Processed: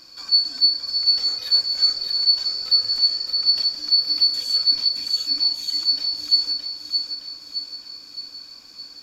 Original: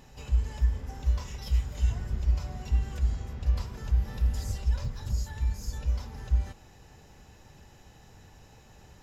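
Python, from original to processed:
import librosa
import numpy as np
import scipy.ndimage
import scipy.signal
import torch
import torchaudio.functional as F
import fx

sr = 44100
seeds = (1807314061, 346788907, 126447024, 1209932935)

y = fx.band_shuffle(x, sr, order='2341')
y = fx.echo_feedback(y, sr, ms=617, feedback_pct=55, wet_db=-6.0)
y = y * librosa.db_to_amplitude(6.0)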